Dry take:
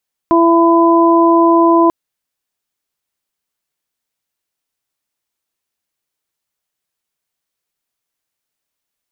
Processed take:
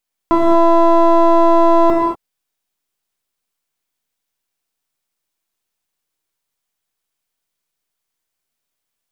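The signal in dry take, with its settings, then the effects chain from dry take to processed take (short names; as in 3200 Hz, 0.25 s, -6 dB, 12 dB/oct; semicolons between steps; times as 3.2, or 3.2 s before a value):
steady additive tone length 1.59 s, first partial 335 Hz, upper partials -6/-2.5 dB, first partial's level -9 dB
half-wave gain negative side -7 dB; non-linear reverb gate 0.26 s flat, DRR -0.5 dB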